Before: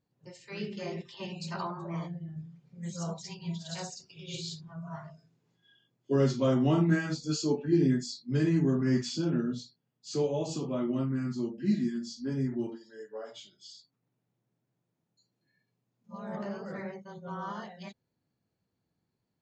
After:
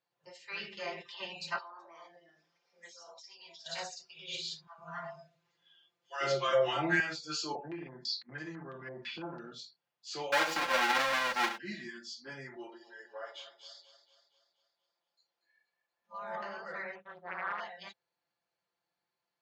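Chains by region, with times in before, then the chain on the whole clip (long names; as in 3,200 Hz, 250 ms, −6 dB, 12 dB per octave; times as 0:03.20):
0:01.58–0:03.66: high-pass filter 300 Hz 24 dB per octave + parametric band 5,400 Hz +14 dB 0.29 octaves + downward compressor 10 to 1, threshold −49 dBFS
0:04.67–0:07.00: comb filter 5.8 ms, depth 74% + multiband delay without the direct sound highs, lows 110 ms, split 780 Hz
0:07.55–0:09.52: spectral tilt −2.5 dB per octave + downward compressor 12 to 1, threshold −27 dBFS + low-pass on a step sequencer 6 Hz 720–6,500 Hz
0:10.32–0:11.58: each half-wave held at its own peak + comb filter 3.7 ms, depth 68%
0:12.56–0:16.22: bass and treble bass −11 dB, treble −4 dB + echo with a time of its own for lows and highs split 500 Hz, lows 154 ms, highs 237 ms, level −12.5 dB
0:16.95–0:17.60: Butterworth band-reject 4,800 Hz, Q 1.5 + high-frequency loss of the air 200 metres + highs frequency-modulated by the lows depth 0.71 ms
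whole clip: three-way crossover with the lows and the highs turned down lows −24 dB, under 570 Hz, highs −14 dB, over 5,500 Hz; comb filter 5.8 ms, depth 57%; dynamic equaliser 1,800 Hz, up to +4 dB, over −56 dBFS, Q 1.4; level +2 dB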